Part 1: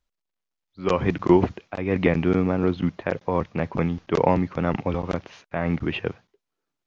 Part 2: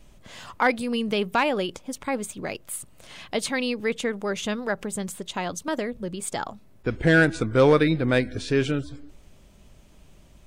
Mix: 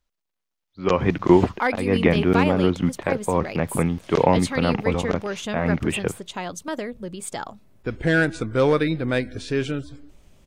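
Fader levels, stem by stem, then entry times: +2.0, -1.5 dB; 0.00, 1.00 s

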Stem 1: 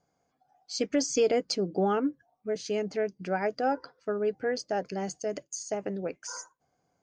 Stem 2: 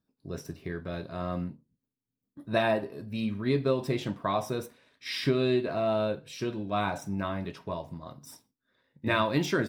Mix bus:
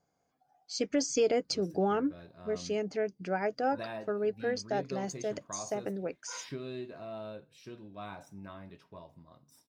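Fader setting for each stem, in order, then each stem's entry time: -2.5, -14.5 dB; 0.00, 1.25 s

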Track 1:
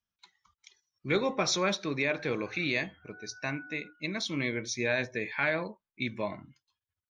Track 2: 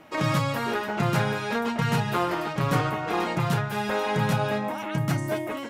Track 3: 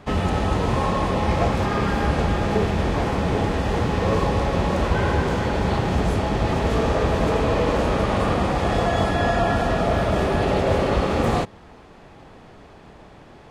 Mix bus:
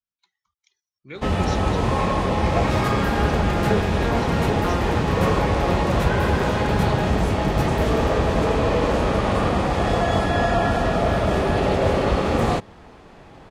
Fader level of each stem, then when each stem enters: -9.0, -2.0, +0.5 dB; 0.00, 2.50, 1.15 s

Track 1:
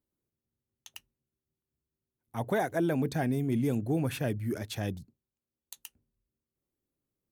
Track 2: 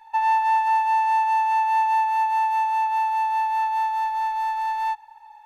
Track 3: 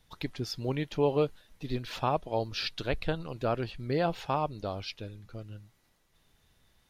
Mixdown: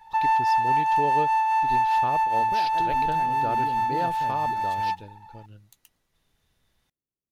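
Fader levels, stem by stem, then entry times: -10.0, -1.5, -3.5 dB; 0.00, 0.00, 0.00 s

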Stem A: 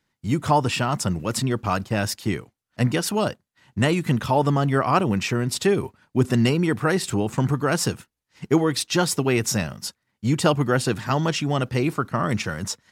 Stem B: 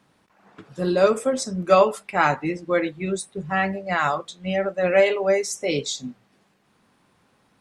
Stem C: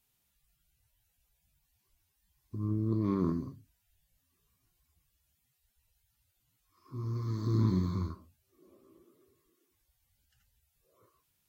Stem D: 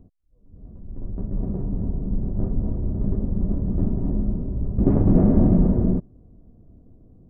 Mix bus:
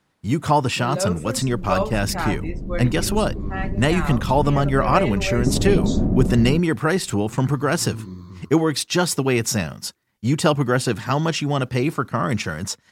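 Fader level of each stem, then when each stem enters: +1.5, -7.5, -6.0, -3.5 dB; 0.00, 0.00, 0.35, 0.60 s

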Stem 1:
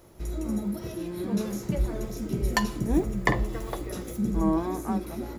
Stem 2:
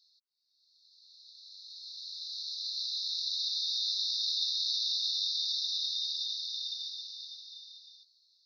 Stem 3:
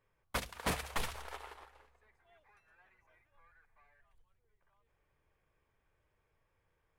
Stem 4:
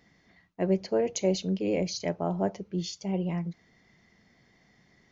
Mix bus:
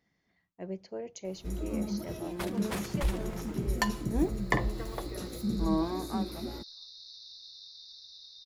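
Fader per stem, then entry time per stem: -4.0, -17.5, -3.0, -13.0 dB; 1.25, 2.40, 2.05, 0.00 s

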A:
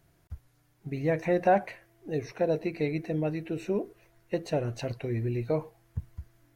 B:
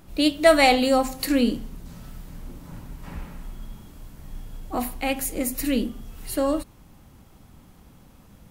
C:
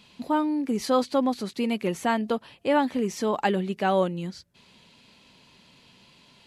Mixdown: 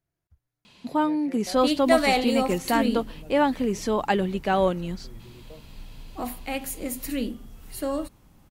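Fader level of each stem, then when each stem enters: -19.0, -5.0, +1.0 dB; 0.00, 1.45, 0.65 s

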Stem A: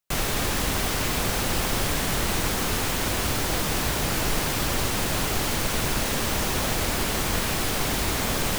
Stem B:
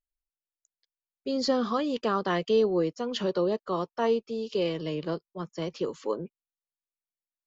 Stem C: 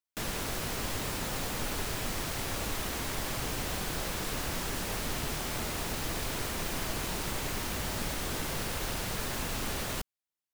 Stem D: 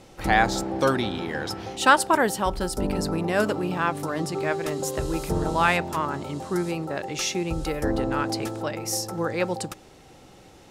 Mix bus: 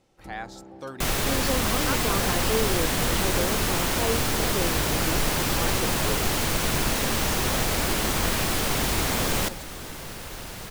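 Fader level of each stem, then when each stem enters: +0.5, -4.0, -3.0, -16.0 dB; 0.90, 0.00, 1.50, 0.00 s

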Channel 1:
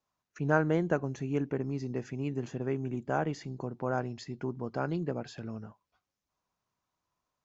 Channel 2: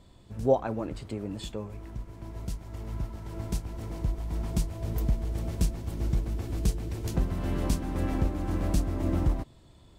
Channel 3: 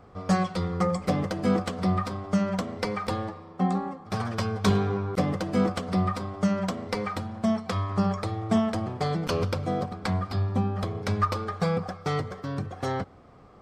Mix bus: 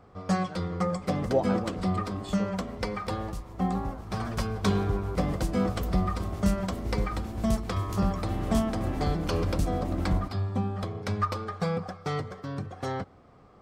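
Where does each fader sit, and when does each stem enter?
-19.5, -2.5, -3.0 dB; 0.00, 0.85, 0.00 s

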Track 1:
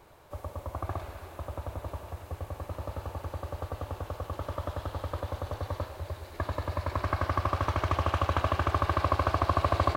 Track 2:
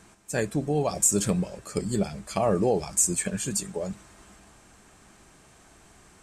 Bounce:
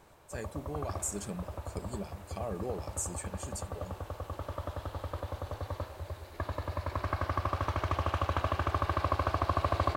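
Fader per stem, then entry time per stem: -3.5, -14.0 dB; 0.00, 0.00 s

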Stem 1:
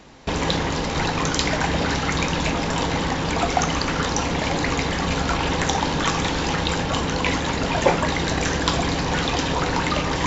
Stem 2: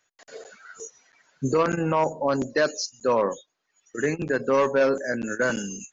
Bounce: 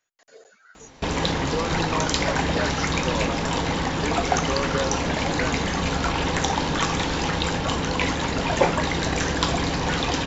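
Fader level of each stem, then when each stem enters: -1.5, -7.5 dB; 0.75, 0.00 s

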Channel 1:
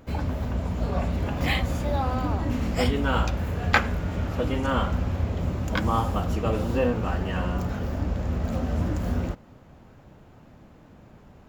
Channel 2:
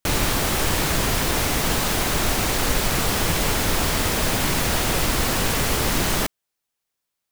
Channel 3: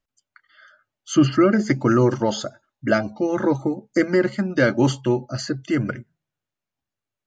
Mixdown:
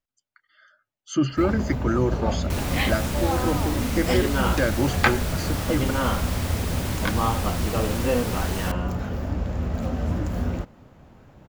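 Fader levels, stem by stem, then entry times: +0.5, -11.0, -6.0 dB; 1.30, 2.45, 0.00 s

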